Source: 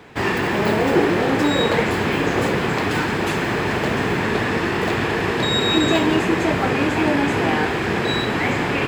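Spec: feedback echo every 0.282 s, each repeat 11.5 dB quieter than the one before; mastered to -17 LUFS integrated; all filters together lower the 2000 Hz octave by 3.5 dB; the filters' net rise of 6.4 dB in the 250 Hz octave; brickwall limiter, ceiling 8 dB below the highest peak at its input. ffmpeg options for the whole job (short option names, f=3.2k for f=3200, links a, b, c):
-af "equalizer=f=250:t=o:g=8.5,equalizer=f=2k:t=o:g=-4.5,alimiter=limit=-10dB:level=0:latency=1,aecho=1:1:282|564|846:0.266|0.0718|0.0194,volume=1.5dB"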